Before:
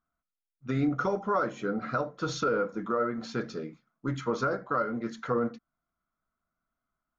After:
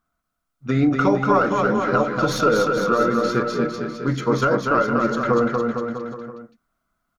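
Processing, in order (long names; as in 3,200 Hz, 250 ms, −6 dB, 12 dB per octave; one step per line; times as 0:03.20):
stylus tracing distortion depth 0.023 ms
bouncing-ball delay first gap 240 ms, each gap 0.9×, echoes 5
level +9 dB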